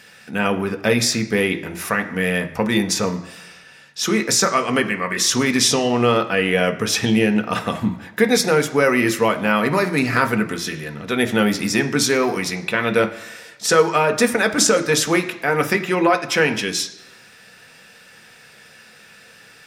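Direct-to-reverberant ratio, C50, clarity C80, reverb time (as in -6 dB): 5.5 dB, 12.5 dB, 15.5 dB, 1.0 s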